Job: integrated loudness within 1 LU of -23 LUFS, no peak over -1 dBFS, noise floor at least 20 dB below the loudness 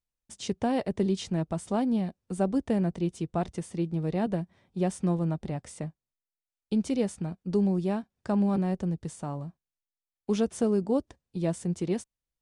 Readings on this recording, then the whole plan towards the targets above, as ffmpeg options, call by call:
loudness -30.0 LUFS; peak -15.0 dBFS; loudness target -23.0 LUFS
-> -af "volume=7dB"

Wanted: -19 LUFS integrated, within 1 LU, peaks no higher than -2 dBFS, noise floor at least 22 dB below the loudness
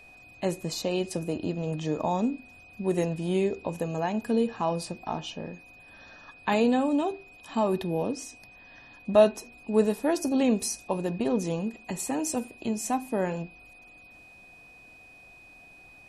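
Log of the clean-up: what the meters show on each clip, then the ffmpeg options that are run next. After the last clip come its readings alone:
steady tone 2500 Hz; tone level -50 dBFS; loudness -28.5 LUFS; peak -7.5 dBFS; loudness target -19.0 LUFS
-> -af "bandreject=f=2.5k:w=30"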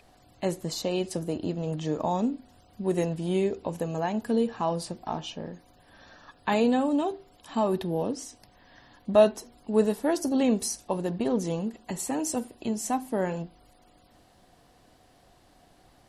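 steady tone none; loudness -28.5 LUFS; peak -7.5 dBFS; loudness target -19.0 LUFS
-> -af "volume=9.5dB,alimiter=limit=-2dB:level=0:latency=1"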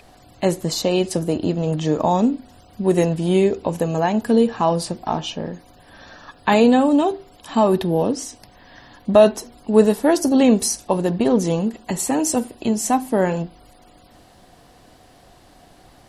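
loudness -19.0 LUFS; peak -2.0 dBFS; noise floor -50 dBFS

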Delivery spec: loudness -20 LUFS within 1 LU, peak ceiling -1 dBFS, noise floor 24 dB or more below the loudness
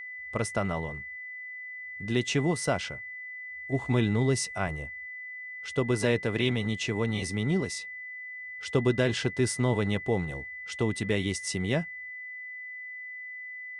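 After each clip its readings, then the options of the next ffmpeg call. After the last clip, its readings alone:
steady tone 2000 Hz; tone level -38 dBFS; loudness -30.5 LUFS; peak -12.5 dBFS; loudness target -20.0 LUFS
-> -af "bandreject=f=2k:w=30"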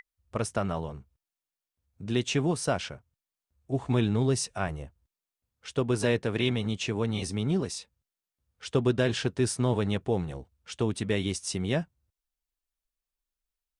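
steady tone none; loudness -29.5 LUFS; peak -12.5 dBFS; loudness target -20.0 LUFS
-> -af "volume=9.5dB"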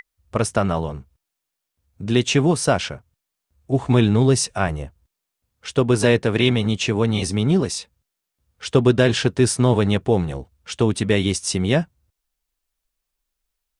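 loudness -20.0 LUFS; peak -3.0 dBFS; noise floor -82 dBFS

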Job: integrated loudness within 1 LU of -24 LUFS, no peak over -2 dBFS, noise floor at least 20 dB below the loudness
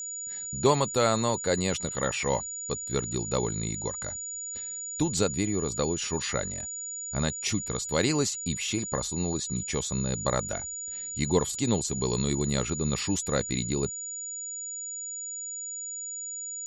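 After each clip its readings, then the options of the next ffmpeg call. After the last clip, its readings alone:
steady tone 6900 Hz; tone level -34 dBFS; loudness -29.0 LUFS; peak -8.5 dBFS; loudness target -24.0 LUFS
-> -af "bandreject=f=6.9k:w=30"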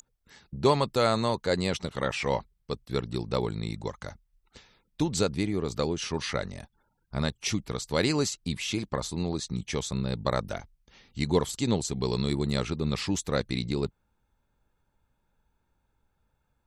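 steady tone none; loudness -29.5 LUFS; peak -9.0 dBFS; loudness target -24.0 LUFS
-> -af "volume=5.5dB"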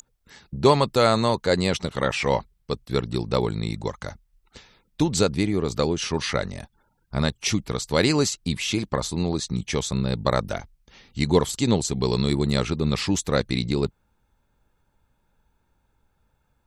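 loudness -24.0 LUFS; peak -3.5 dBFS; noise floor -70 dBFS

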